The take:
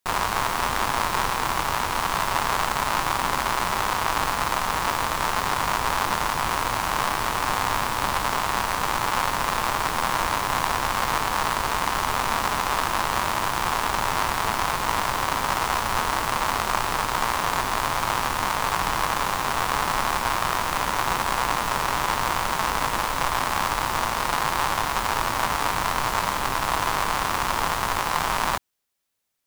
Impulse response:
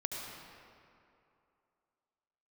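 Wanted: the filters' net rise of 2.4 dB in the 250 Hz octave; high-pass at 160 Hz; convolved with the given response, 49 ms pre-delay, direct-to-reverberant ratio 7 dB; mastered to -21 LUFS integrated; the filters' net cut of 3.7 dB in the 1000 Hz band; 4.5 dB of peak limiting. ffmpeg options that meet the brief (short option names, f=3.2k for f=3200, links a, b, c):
-filter_complex "[0:a]highpass=160,equalizer=f=250:t=o:g=4.5,equalizer=f=1k:t=o:g=-4.5,alimiter=limit=-11.5dB:level=0:latency=1,asplit=2[a][b];[1:a]atrim=start_sample=2205,adelay=49[c];[b][c]afir=irnorm=-1:irlink=0,volume=-9dB[d];[a][d]amix=inputs=2:normalize=0,volume=5.5dB"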